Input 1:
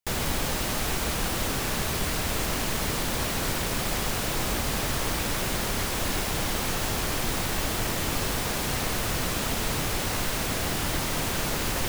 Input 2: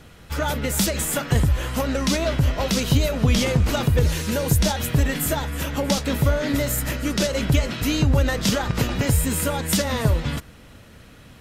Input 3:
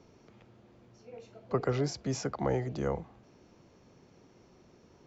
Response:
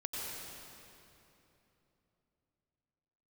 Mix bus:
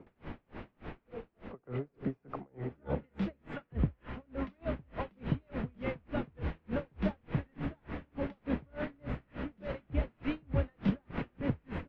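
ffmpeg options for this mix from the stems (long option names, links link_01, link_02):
-filter_complex "[0:a]volume=-13dB,asplit=2[link_01][link_02];[link_02]volume=-14.5dB[link_03];[1:a]acrossover=split=660[link_04][link_05];[link_04]aeval=exprs='val(0)*(1-0.5/2+0.5/2*cos(2*PI*2.1*n/s))':channel_layout=same[link_06];[link_05]aeval=exprs='val(0)*(1-0.5/2-0.5/2*cos(2*PI*2.1*n/s))':channel_layout=same[link_07];[link_06][link_07]amix=inputs=2:normalize=0,adelay=2400,volume=-9.5dB[link_08];[2:a]acompressor=threshold=-38dB:ratio=2,volume=0.5dB,asplit=3[link_09][link_10][link_11];[link_10]volume=-12dB[link_12];[link_11]apad=whole_len=524271[link_13];[link_01][link_13]sidechaincompress=threshold=-56dB:ratio=3:attack=16:release=1080[link_14];[3:a]atrim=start_sample=2205[link_15];[link_03][link_12]amix=inputs=2:normalize=0[link_16];[link_16][link_15]afir=irnorm=-1:irlink=0[link_17];[link_14][link_08][link_09][link_17]amix=inputs=4:normalize=0,lowpass=frequency=2500:width=0.5412,lowpass=frequency=2500:width=1.3066,equalizer=frequency=250:width_type=o:width=1.9:gain=6,aeval=exprs='val(0)*pow(10,-37*(0.5-0.5*cos(2*PI*3.4*n/s))/20)':channel_layout=same"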